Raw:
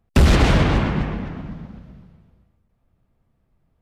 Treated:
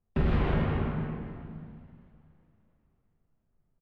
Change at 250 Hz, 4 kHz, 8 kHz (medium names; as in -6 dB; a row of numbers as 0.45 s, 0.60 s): -10.5 dB, -20.5 dB, under -35 dB